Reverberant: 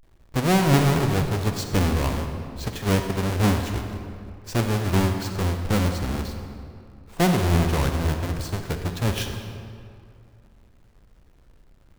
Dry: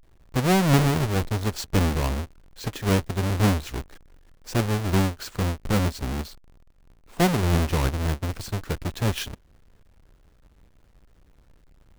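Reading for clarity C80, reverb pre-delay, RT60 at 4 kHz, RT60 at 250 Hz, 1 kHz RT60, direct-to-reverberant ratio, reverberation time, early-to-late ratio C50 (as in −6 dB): 6.5 dB, 39 ms, 1.5 s, 2.6 s, 2.3 s, 5.0 dB, 2.3 s, 5.5 dB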